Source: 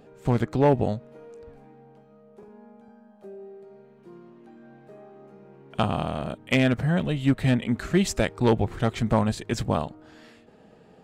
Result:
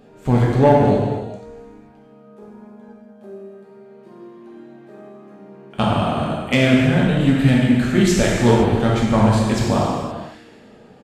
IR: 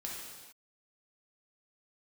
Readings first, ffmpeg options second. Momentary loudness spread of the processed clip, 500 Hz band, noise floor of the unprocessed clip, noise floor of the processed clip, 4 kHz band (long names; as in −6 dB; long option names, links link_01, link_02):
11 LU, +7.5 dB, −54 dBFS, −47 dBFS, +8.0 dB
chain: -filter_complex "[1:a]atrim=start_sample=2205,asetrate=38808,aresample=44100[link_01];[0:a][link_01]afir=irnorm=-1:irlink=0,aresample=32000,aresample=44100,volume=6.5dB"